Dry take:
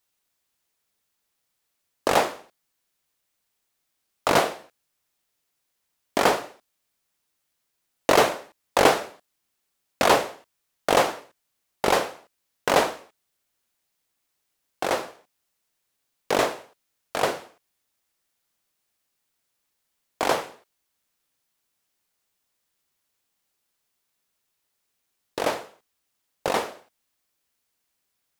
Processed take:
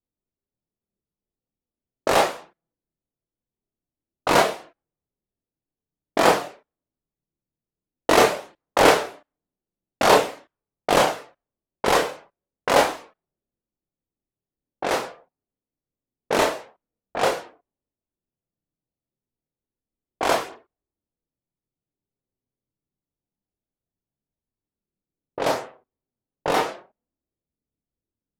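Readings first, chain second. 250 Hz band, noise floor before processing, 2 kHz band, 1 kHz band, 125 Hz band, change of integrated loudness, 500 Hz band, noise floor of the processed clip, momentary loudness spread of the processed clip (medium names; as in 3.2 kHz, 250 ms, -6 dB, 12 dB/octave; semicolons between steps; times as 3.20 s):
+2.5 dB, -77 dBFS, +2.5 dB, +2.5 dB, +2.5 dB, +2.5 dB, +2.5 dB, under -85 dBFS, 18 LU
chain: level-controlled noise filter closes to 320 Hz, open at -22 dBFS; chorus voices 4, 0.14 Hz, delay 28 ms, depth 4 ms; trim +5.5 dB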